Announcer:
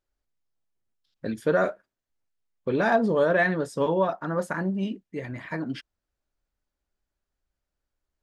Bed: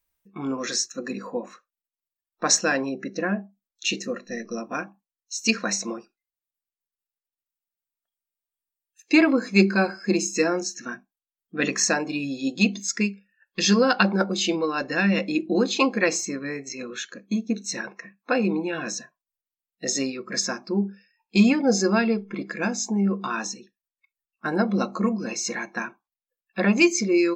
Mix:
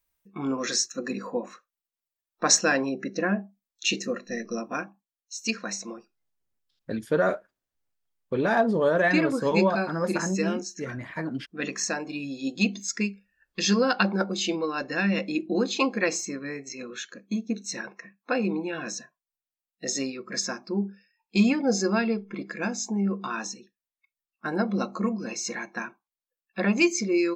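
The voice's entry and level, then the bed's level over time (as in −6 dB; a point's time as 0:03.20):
5.65 s, −0.5 dB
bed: 0:04.56 0 dB
0:05.56 −7 dB
0:11.89 −7 dB
0:12.52 −3.5 dB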